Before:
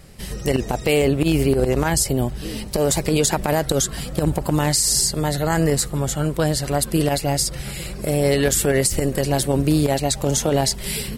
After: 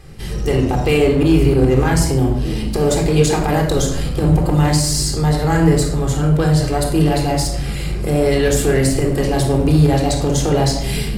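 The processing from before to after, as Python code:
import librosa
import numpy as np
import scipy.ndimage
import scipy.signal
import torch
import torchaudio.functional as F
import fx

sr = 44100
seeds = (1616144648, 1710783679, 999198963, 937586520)

p1 = fx.high_shelf(x, sr, hz=7500.0, db=-9.0)
p2 = fx.room_shoebox(p1, sr, seeds[0], volume_m3=1900.0, walls='furnished', distance_m=3.8)
p3 = np.clip(10.0 ** (20.5 / 20.0) * p2, -1.0, 1.0) / 10.0 ** (20.5 / 20.0)
p4 = p2 + (p3 * 10.0 ** (-6.0 / 20.0))
y = p4 * 10.0 ** (-2.5 / 20.0)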